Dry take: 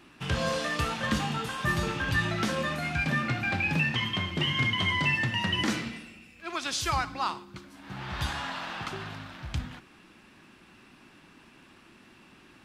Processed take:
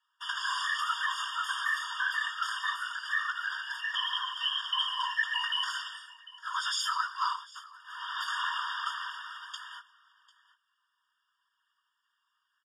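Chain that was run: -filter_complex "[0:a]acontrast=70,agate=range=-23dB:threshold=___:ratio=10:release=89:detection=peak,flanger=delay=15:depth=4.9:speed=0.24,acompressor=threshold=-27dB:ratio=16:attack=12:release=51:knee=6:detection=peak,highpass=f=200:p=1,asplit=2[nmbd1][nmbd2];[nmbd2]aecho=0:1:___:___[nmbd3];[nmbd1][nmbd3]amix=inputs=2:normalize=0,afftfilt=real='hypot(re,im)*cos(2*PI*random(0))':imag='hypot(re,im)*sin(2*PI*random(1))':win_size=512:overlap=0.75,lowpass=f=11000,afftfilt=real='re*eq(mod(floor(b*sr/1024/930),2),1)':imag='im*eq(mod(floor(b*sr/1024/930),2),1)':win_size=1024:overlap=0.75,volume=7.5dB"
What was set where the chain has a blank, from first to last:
-41dB, 747, 0.0891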